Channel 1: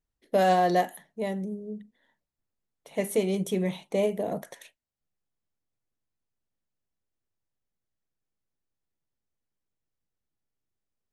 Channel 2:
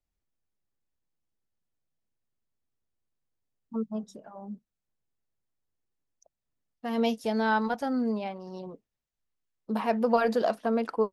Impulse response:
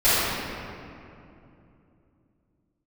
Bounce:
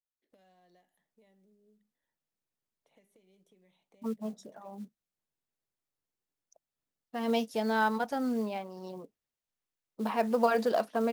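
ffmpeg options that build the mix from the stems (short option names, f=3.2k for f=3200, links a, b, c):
-filter_complex "[0:a]acompressor=threshold=-32dB:ratio=4,lowpass=f=3.1k:p=1,acrossover=split=250|2300[a][b][c];[a]acompressor=threshold=-51dB:ratio=4[d];[b]acompressor=threshold=-48dB:ratio=4[e];[c]acompressor=threshold=-56dB:ratio=4[f];[d][e][f]amix=inputs=3:normalize=0,volume=-19.5dB[g];[1:a]equalizer=f=61:w=7.8:g=5.5,adelay=300,volume=-1.5dB[h];[g][h]amix=inputs=2:normalize=0,acrusher=bits=7:mode=log:mix=0:aa=0.000001,lowshelf=f=100:g=-12"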